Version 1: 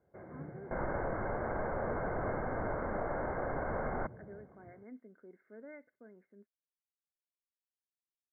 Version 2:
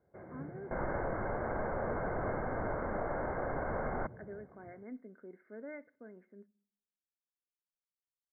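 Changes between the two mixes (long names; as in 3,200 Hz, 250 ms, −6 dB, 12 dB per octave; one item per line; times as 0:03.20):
speech +3.5 dB
reverb: on, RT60 0.55 s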